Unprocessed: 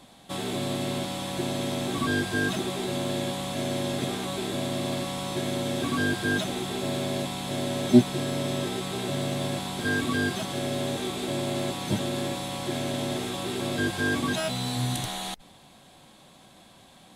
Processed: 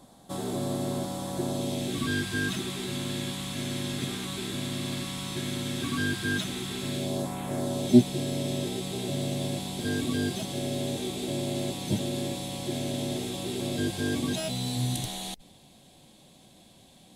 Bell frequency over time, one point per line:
bell -12.5 dB 1.4 oct
1.47 s 2500 Hz
2.14 s 640 Hz
6.87 s 640 Hz
7.41 s 5000 Hz
7.9 s 1300 Hz

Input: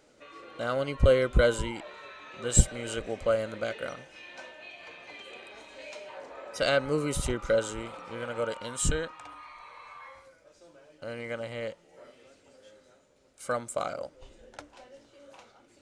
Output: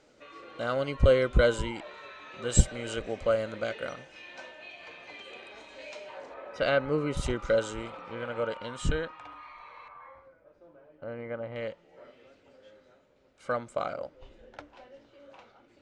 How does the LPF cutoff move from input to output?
6900 Hz
from 6.34 s 2800 Hz
from 7.17 s 6300 Hz
from 7.9 s 3600 Hz
from 9.88 s 1400 Hz
from 11.56 s 3500 Hz

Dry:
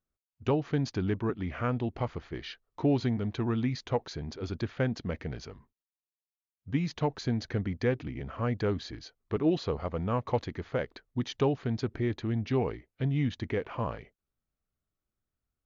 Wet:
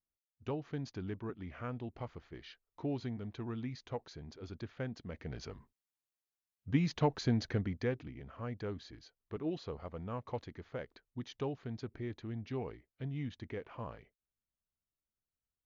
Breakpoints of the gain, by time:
5.1 s -11 dB
5.5 s -1 dB
7.42 s -1 dB
8.21 s -11 dB

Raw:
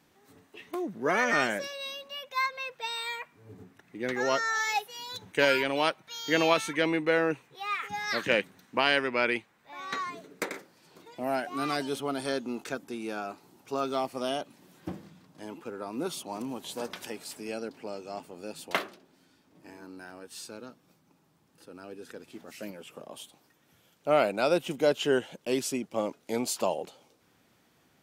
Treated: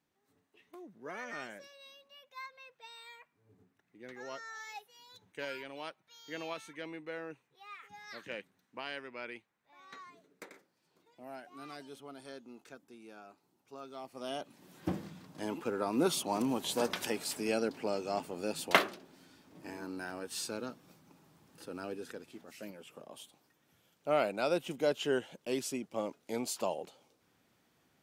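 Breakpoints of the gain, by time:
13.94 s -17 dB
14.35 s -7 dB
14.96 s +4 dB
21.85 s +4 dB
22.42 s -6 dB

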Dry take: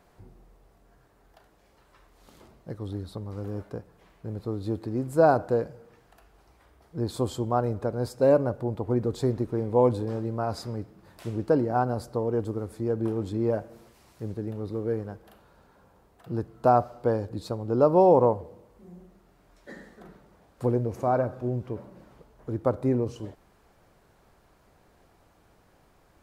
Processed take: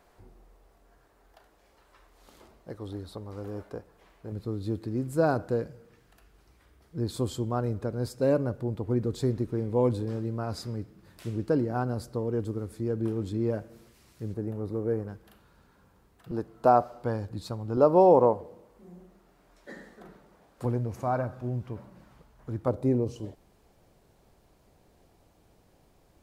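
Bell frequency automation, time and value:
bell -8 dB 1.4 oct
140 Hz
from 4.32 s 770 Hz
from 14.34 s 3700 Hz
from 15.08 s 650 Hz
from 16.31 s 95 Hz
from 17.03 s 450 Hz
from 17.77 s 81 Hz
from 20.65 s 430 Hz
from 22.68 s 1400 Hz

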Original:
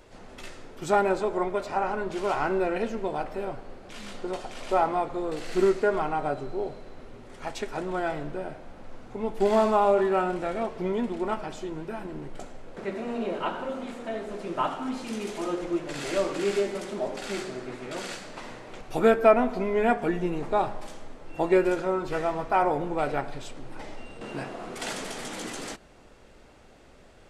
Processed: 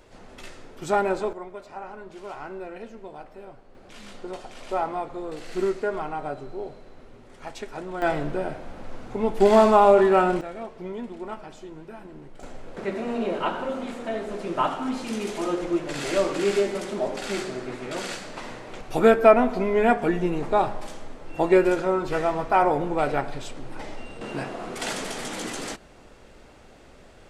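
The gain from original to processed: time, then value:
0 dB
from 1.33 s -10.5 dB
from 3.75 s -3 dB
from 8.02 s +6 dB
from 10.41 s -6 dB
from 12.43 s +3.5 dB

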